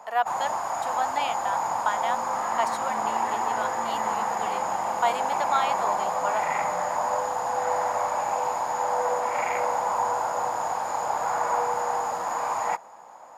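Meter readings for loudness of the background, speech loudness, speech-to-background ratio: -27.0 LUFS, -31.5 LUFS, -4.5 dB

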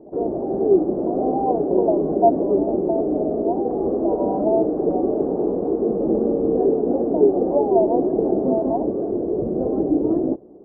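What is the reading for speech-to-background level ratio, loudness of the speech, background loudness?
-5.0 dB, -26.0 LUFS, -21.0 LUFS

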